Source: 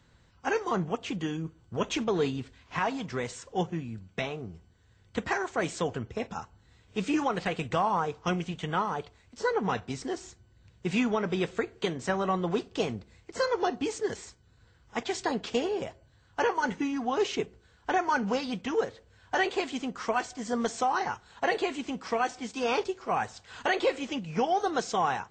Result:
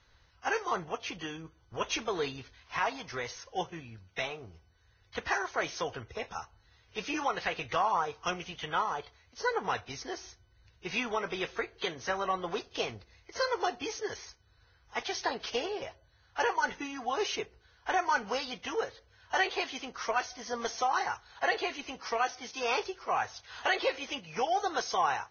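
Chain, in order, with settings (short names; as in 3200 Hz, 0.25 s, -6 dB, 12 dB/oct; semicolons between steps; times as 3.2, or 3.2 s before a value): bell 200 Hz -15 dB 1.7 oct; Vorbis 16 kbps 16000 Hz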